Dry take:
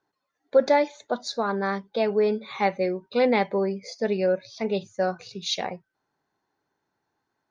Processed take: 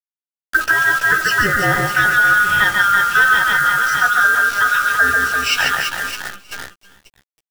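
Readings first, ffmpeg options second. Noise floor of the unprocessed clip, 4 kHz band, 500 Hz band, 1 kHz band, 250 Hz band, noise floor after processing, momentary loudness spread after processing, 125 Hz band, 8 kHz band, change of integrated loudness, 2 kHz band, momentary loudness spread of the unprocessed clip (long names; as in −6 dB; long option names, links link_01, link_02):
−80 dBFS, +12.0 dB, −7.5 dB, +12.5 dB, −2.5 dB, below −85 dBFS, 11 LU, +8.5 dB, can't be measured, +11.5 dB, +24.5 dB, 8 LU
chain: -filter_complex "[0:a]afftfilt=real='real(if(lt(b,960),b+48*(1-2*mod(floor(b/48),2)),b),0)':imag='imag(if(lt(b,960),b+48*(1-2*mod(floor(b/48),2)),b),0)':win_size=2048:overlap=0.75,highshelf=frequency=4400:gain=-6,asplit=2[link_01][link_02];[link_02]aecho=0:1:140|336|610.4|994.6|1532:0.631|0.398|0.251|0.158|0.1[link_03];[link_01][link_03]amix=inputs=2:normalize=0,acompressor=threshold=-23dB:ratio=8,agate=range=-29dB:threshold=-46dB:ratio=16:detection=peak,asplit=2[link_04][link_05];[link_05]aecho=0:1:320:0.168[link_06];[link_04][link_06]amix=inputs=2:normalize=0,acontrast=64,acrusher=bits=6:dc=4:mix=0:aa=0.000001,asplit=2[link_07][link_08];[link_08]adelay=15,volume=-7dB[link_09];[link_07][link_09]amix=inputs=2:normalize=0,volume=5.5dB"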